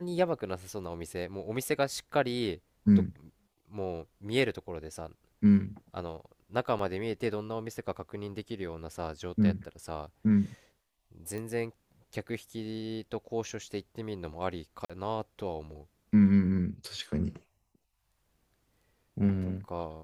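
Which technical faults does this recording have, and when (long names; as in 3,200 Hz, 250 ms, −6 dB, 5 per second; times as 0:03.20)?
0:06.79: drop-out 3.6 ms
0:11.38: click −26 dBFS
0:14.85–0:14.90: drop-out 46 ms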